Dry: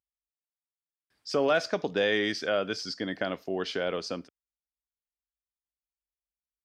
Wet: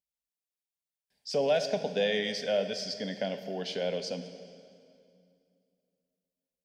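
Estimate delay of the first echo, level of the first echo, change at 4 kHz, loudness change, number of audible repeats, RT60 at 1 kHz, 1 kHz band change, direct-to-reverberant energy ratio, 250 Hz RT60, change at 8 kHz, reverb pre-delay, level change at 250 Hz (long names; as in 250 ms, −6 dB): no echo audible, no echo audible, −0.5 dB, −2.0 dB, no echo audible, 2.3 s, −4.5 dB, 8.5 dB, 3.0 s, 0.0 dB, 5 ms, −4.0 dB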